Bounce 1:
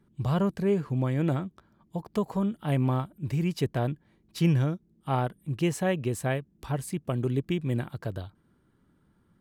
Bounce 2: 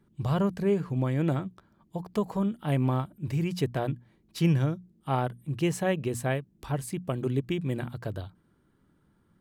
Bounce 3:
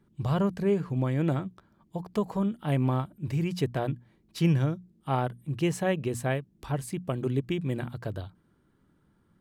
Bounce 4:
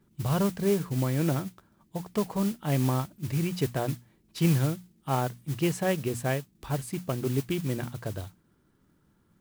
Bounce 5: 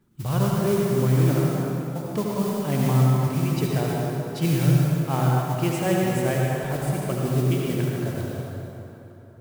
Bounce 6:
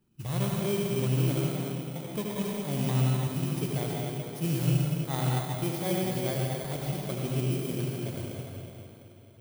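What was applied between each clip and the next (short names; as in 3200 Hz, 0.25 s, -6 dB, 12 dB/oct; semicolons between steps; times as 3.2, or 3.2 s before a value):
notches 60/120/180/240 Hz
high shelf 10000 Hz -3.5 dB
modulation noise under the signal 16 dB
reverb RT60 3.4 s, pre-delay 63 ms, DRR -3.5 dB
FFT order left unsorted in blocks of 16 samples; gain -7 dB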